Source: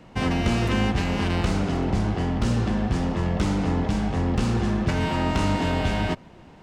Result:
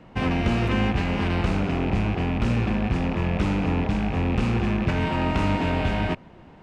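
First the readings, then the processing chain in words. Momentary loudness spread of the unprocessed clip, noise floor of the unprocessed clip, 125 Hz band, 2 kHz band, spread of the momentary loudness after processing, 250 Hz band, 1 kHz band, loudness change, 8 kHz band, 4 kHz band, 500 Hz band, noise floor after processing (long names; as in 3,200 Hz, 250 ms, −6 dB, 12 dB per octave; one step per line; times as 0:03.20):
2 LU, −48 dBFS, 0.0 dB, +1.0 dB, 2 LU, 0.0 dB, 0.0 dB, 0.0 dB, can't be measured, −2.0 dB, 0.0 dB, −48 dBFS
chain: loose part that buzzes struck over −28 dBFS, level −23 dBFS
bass and treble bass 0 dB, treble −10 dB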